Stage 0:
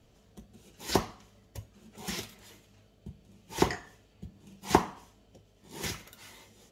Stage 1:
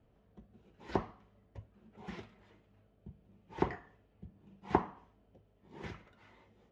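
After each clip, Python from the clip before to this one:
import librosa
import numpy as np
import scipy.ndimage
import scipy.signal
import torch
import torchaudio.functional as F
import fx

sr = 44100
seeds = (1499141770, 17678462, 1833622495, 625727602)

y = scipy.signal.sosfilt(scipy.signal.butter(2, 1800.0, 'lowpass', fs=sr, output='sos'), x)
y = y * 10.0 ** (-6.0 / 20.0)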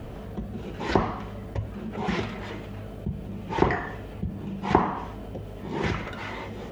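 y = fx.env_flatten(x, sr, amount_pct=50)
y = y * 10.0 ** (8.0 / 20.0)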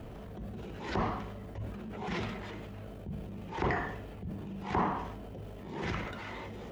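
y = fx.transient(x, sr, attack_db=-8, sustain_db=6)
y = y * 10.0 ** (-7.0 / 20.0)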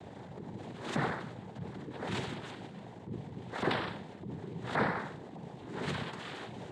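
y = fx.noise_vocoder(x, sr, seeds[0], bands=6)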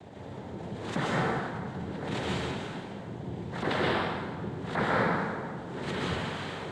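y = fx.rev_plate(x, sr, seeds[1], rt60_s=1.6, hf_ratio=0.65, predelay_ms=110, drr_db=-5.0)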